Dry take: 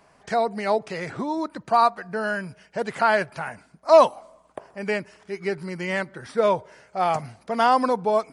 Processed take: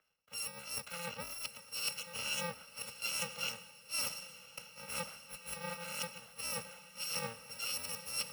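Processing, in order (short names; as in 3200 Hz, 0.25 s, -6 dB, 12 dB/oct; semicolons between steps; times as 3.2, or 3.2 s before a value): FFT order left unsorted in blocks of 128 samples; dynamic EQ 8800 Hz, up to +6 dB, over -34 dBFS, Q 1.3; reverse; compressor 6:1, threshold -31 dBFS, peak gain reduction 23 dB; reverse; three-band isolator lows -16 dB, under 330 Hz, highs -17 dB, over 3900 Hz; on a send: diffused feedback echo 1.042 s, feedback 60%, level -9.5 dB; on the sum: three-band expander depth 70%; gain +5.5 dB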